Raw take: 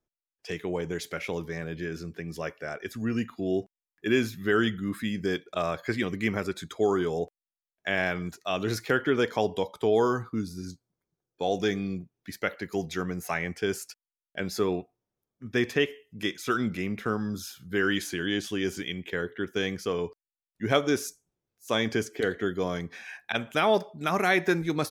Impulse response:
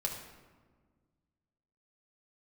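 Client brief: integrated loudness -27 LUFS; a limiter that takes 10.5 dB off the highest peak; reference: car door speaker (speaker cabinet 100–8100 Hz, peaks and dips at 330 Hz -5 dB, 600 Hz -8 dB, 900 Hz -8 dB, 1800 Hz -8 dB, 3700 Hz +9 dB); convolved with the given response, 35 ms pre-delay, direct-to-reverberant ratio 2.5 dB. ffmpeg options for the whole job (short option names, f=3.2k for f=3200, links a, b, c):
-filter_complex "[0:a]alimiter=limit=-19.5dB:level=0:latency=1,asplit=2[a][b];[1:a]atrim=start_sample=2205,adelay=35[c];[b][c]afir=irnorm=-1:irlink=0,volume=-5dB[d];[a][d]amix=inputs=2:normalize=0,highpass=100,equalizer=f=330:t=q:w=4:g=-5,equalizer=f=600:t=q:w=4:g=-8,equalizer=f=900:t=q:w=4:g=-8,equalizer=f=1.8k:t=q:w=4:g=-8,equalizer=f=3.7k:t=q:w=4:g=9,lowpass=f=8.1k:w=0.5412,lowpass=f=8.1k:w=1.3066,volume=5.5dB"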